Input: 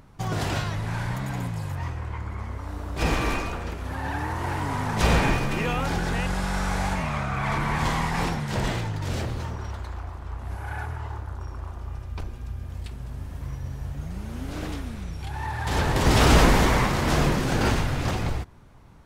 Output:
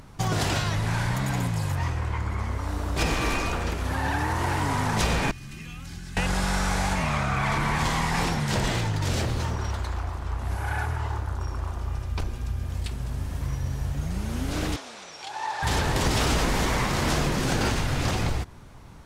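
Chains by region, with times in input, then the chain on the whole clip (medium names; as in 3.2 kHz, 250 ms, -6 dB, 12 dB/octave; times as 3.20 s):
5.31–6.17 s: amplifier tone stack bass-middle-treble 6-0-2 + band-stop 3.5 kHz, Q 25 + comb of notches 470 Hz
14.76–15.63 s: Chebyshev band-pass 610–6400 Hz + dynamic bell 1.8 kHz, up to -5 dB, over -51 dBFS, Q 1.2
whole clip: peaking EQ 6.9 kHz +5 dB 2.4 oct; compression 5:1, threshold -26 dBFS; trim +4.5 dB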